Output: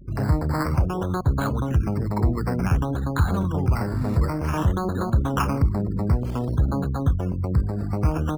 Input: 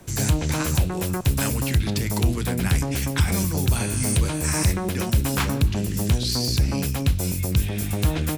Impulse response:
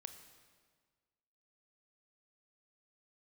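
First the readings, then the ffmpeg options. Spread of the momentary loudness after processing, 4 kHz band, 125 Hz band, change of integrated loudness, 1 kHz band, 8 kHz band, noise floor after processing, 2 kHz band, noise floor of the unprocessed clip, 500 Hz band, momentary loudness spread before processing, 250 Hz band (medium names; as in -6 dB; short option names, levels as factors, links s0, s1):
2 LU, -15.0 dB, 0.0 dB, -1.0 dB, +4.0 dB, -19.0 dB, -28 dBFS, -5.0 dB, -27 dBFS, +1.0 dB, 3 LU, 0.0 dB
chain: -filter_complex "[0:a]aeval=exprs='val(0)+0.00631*(sin(2*PI*50*n/s)+sin(2*PI*2*50*n/s)/2+sin(2*PI*3*50*n/s)/3+sin(2*PI*4*50*n/s)/4+sin(2*PI*5*50*n/s)/5)':c=same,highshelf=f=1800:t=q:w=3:g=-11.5,afftfilt=real='re*gte(hypot(re,im),0.0178)':imag='im*gte(hypot(re,im),0.0178)':win_size=1024:overlap=0.75,acrossover=split=1300[s0][s1];[s1]acrusher=samples=11:mix=1:aa=0.000001:lfo=1:lforange=6.6:lforate=0.55[s2];[s0][s2]amix=inputs=2:normalize=0"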